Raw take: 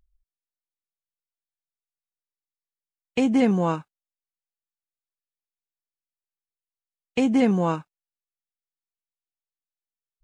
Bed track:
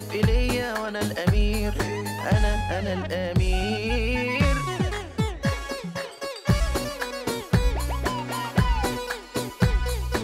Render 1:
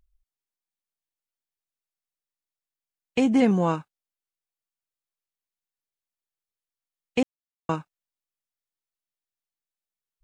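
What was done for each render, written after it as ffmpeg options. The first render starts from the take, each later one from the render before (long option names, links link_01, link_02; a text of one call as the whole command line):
ffmpeg -i in.wav -filter_complex "[0:a]asplit=3[link_01][link_02][link_03];[link_01]atrim=end=7.23,asetpts=PTS-STARTPTS,afade=type=out:start_time=7.226:duration=0.004:curve=hsin[link_04];[link_02]atrim=start=7.23:end=7.69,asetpts=PTS-STARTPTS,volume=0[link_05];[link_03]atrim=start=7.69,asetpts=PTS-STARTPTS,afade=type=in:duration=0.004:curve=hsin[link_06];[link_04][link_05][link_06]concat=n=3:v=0:a=1" out.wav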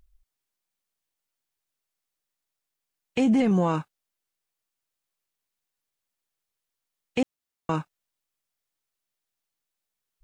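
ffmpeg -i in.wav -af "acontrast=72,alimiter=limit=-15.5dB:level=0:latency=1:release=37" out.wav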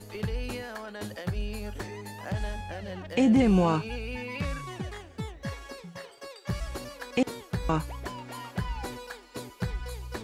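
ffmpeg -i in.wav -i bed.wav -filter_complex "[1:a]volume=-11dB[link_01];[0:a][link_01]amix=inputs=2:normalize=0" out.wav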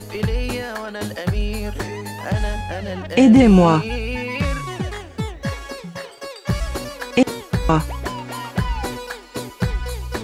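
ffmpeg -i in.wav -af "volume=10.5dB" out.wav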